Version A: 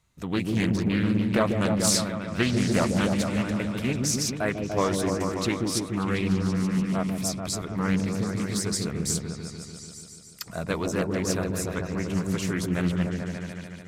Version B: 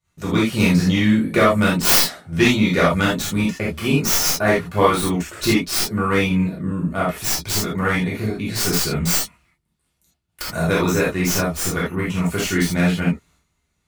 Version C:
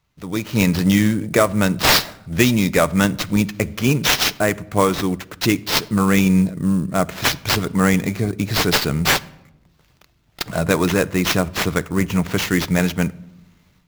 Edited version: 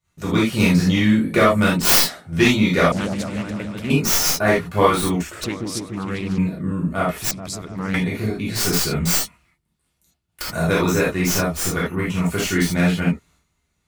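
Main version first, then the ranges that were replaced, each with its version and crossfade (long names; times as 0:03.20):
B
0:02.92–0:03.90: punch in from A
0:05.44–0:06.38: punch in from A
0:07.31–0:07.94: punch in from A
not used: C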